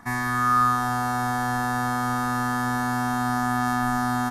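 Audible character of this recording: noise floor -26 dBFS; spectral tilt -5.0 dB/oct

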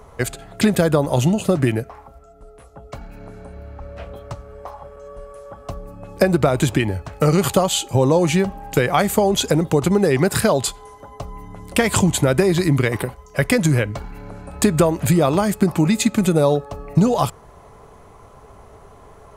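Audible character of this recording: noise floor -45 dBFS; spectral tilt -5.5 dB/oct

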